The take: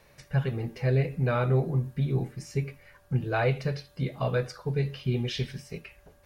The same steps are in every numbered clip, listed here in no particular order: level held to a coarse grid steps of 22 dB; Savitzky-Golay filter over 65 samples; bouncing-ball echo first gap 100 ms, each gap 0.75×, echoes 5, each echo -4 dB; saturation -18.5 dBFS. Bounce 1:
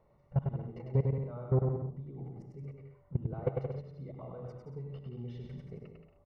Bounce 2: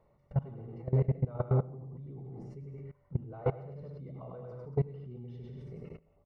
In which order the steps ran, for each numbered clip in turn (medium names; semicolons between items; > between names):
level held to a coarse grid > Savitzky-Golay filter > saturation > bouncing-ball echo; bouncing-ball echo > level held to a coarse grid > saturation > Savitzky-Golay filter